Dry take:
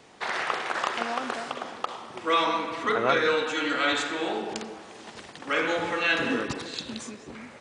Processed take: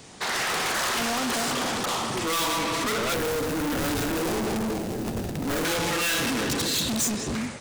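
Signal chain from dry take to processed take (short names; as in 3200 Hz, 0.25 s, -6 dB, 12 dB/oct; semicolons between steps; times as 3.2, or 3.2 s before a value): 3.14–5.65 median filter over 41 samples; tone controls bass +10 dB, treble +7 dB; AGC gain up to 15 dB; hard clip -28.5 dBFS, distortion -2 dB; high shelf 4900 Hz +6.5 dB; gain +2.5 dB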